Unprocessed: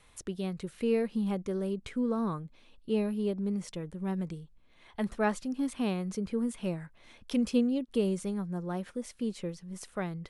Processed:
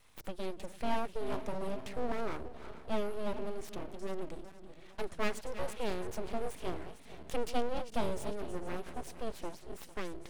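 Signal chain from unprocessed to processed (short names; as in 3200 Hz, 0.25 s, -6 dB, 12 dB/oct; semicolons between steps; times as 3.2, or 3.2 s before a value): regenerating reverse delay 0.226 s, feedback 64%, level -12 dB; full-wave rectifier; gain -2 dB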